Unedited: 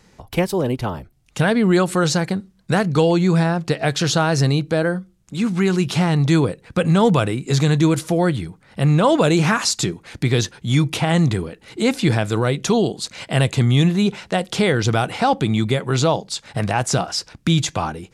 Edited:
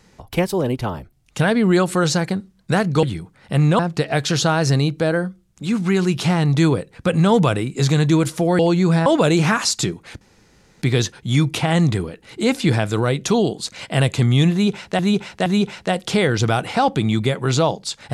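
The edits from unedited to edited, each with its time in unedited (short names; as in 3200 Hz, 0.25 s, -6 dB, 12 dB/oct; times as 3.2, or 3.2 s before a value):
3.03–3.5 swap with 8.3–9.06
10.21 insert room tone 0.61 s
13.91–14.38 loop, 3 plays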